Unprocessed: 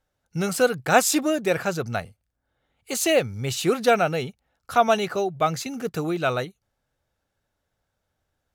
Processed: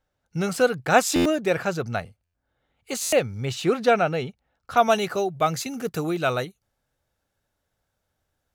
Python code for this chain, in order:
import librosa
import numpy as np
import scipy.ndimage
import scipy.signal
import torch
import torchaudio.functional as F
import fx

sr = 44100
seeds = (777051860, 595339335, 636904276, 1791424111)

y = fx.peak_eq(x, sr, hz=13000.0, db=fx.steps((0.0, -6.5), (3.45, -12.5), (4.77, 3.5)), octaves=1.5)
y = fx.buffer_glitch(y, sr, at_s=(1.15, 2.24, 3.02), block=512, repeats=8)